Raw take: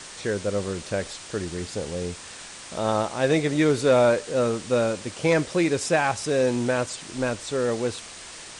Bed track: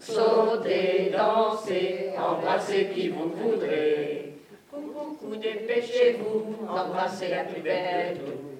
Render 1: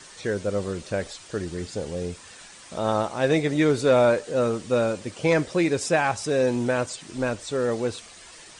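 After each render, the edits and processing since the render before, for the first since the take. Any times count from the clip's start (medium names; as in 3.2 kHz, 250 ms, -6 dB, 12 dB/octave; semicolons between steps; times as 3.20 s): noise reduction 8 dB, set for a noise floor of -41 dBFS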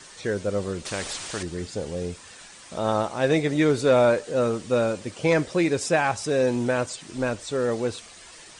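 0.85–1.43 s: spectrum-flattening compressor 2:1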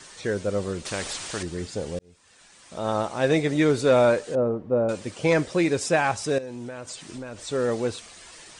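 1.99–3.17 s: fade in; 4.35–4.89 s: Chebyshev low-pass 750 Hz; 6.38–7.40 s: compression 12:1, threshold -32 dBFS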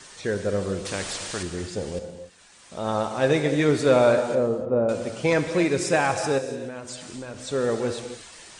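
gated-style reverb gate 320 ms flat, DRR 7 dB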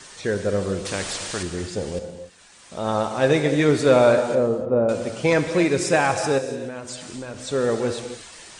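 trim +2.5 dB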